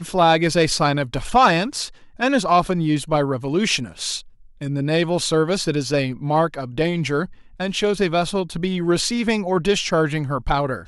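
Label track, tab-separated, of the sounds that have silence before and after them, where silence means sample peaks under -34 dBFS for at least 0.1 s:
2.190000	4.210000	sound
4.610000	7.330000	sound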